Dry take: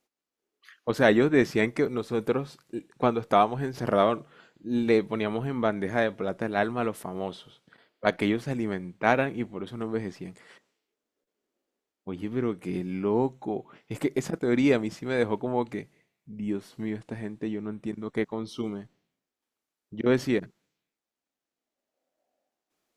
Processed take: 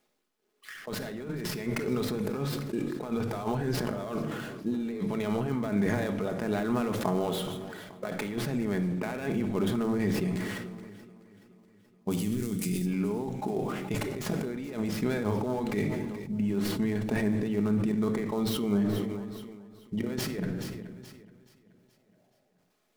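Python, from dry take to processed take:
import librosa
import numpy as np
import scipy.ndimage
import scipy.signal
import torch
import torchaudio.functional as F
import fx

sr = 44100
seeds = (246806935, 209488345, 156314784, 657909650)

y = fx.dead_time(x, sr, dead_ms=0.06)
y = fx.over_compress(y, sr, threshold_db=-34.0, ratio=-1.0)
y = fx.curve_eq(y, sr, hz=(180.0, 970.0, 8200.0), db=(0, -13, 15), at=(12.1, 12.85), fade=0.02)
y = fx.echo_feedback(y, sr, ms=426, feedback_pct=57, wet_db=-20)
y = fx.room_shoebox(y, sr, seeds[0], volume_m3=2200.0, walls='furnished', distance_m=1.4)
y = fx.sustainer(y, sr, db_per_s=28.0)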